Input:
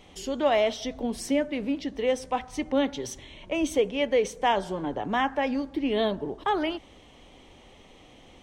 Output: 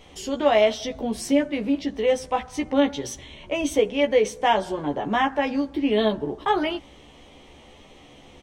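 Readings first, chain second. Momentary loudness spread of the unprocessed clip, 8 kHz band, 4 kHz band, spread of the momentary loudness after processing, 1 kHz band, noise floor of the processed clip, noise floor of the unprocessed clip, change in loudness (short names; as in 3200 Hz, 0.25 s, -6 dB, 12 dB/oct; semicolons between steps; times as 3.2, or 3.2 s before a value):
8 LU, +3.5 dB, +3.5 dB, 9 LU, +3.5 dB, -49 dBFS, -53 dBFS, +4.0 dB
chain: doubler 14 ms -3.5 dB; gain +2 dB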